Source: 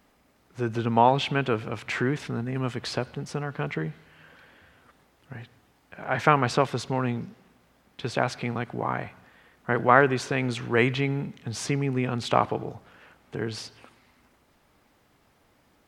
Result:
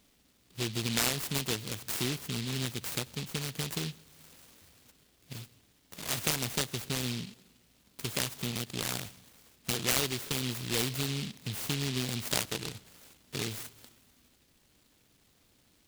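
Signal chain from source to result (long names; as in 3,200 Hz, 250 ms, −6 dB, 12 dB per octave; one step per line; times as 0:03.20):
downward compressor 2 to 1, threshold −28 dBFS, peak gain reduction 9.5 dB
short delay modulated by noise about 3,300 Hz, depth 0.38 ms
level −3 dB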